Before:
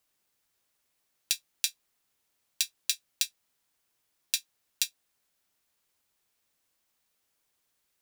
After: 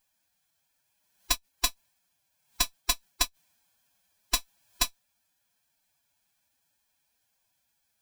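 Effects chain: comb filter that takes the minimum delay 2 ms; formant-preserving pitch shift +8.5 st; trim +5.5 dB

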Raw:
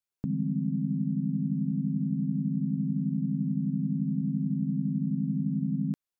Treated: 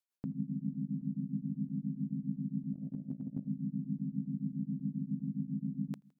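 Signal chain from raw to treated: feedback delay 82 ms, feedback 45%, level -20 dB; 2.73–3.48 s: compressor with a negative ratio -31 dBFS, ratio -0.5; bass shelf 230 Hz -10 dB; tremolo of two beating tones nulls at 7.4 Hz

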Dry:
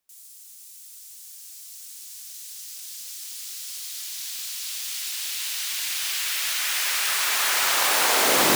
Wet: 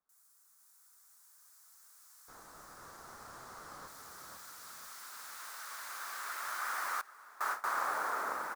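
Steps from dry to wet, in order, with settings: fade out at the end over 1.82 s; 2.28–3.88 s: overdrive pedal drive 19 dB, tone 2.5 kHz, clips at -23 dBFS; resonant high shelf 1.9 kHz -14 dB, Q 3; frequency-shifting echo 494 ms, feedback 52%, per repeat +35 Hz, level -4 dB; 7.01–7.68 s: gate with hold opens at -17 dBFS; trim -6 dB

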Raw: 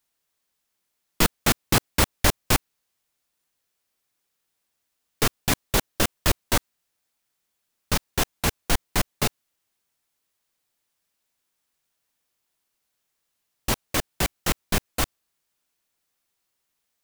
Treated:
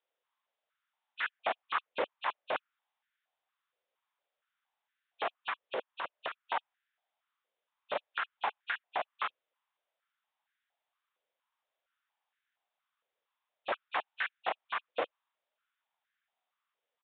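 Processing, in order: knee-point frequency compression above 2.4 kHz 1.5:1; low-pass that closes with the level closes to 2.8 kHz, closed at -21.5 dBFS; in parallel at -1.5 dB: level held to a coarse grid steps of 24 dB; on the sum: peak limiter -13.5 dBFS, peak gain reduction 9.5 dB; 5.50–6.53 s: compression, threshold -25 dBFS, peak gain reduction 7 dB; saturation -16.5 dBFS, distortion -18 dB; resampled via 8 kHz; step-sequenced high-pass 4.3 Hz 510–1600 Hz; trim -8 dB

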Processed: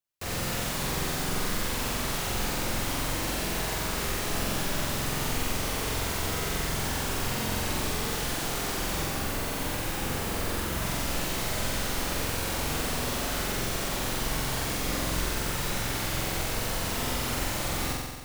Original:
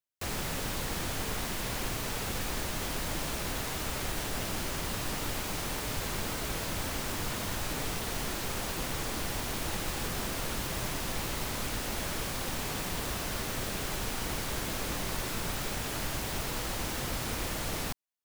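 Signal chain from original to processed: 9.05–10.82 s: peaking EQ 5.3 kHz -3.5 dB 2.1 oct; on a send: flutter echo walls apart 7.8 m, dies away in 1.4 s

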